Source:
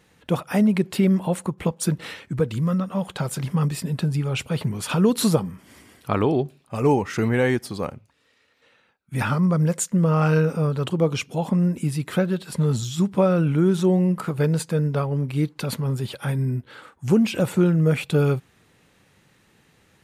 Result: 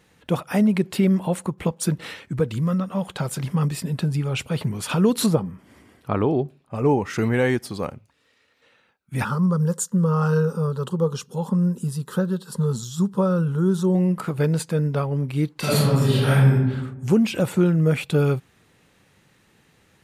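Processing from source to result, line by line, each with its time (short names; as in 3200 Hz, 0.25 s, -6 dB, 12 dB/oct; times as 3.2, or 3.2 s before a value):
5.26–7.02 high shelf 2400 Hz -10.5 dB
9.24–13.95 fixed phaser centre 450 Hz, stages 8
15.59–16.52 reverb throw, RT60 1.1 s, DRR -9.5 dB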